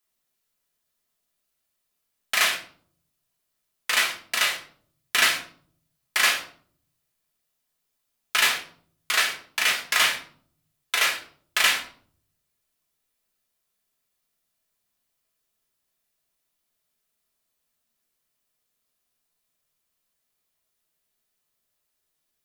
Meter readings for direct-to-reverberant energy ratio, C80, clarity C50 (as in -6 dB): -2.0 dB, 13.5 dB, 10.0 dB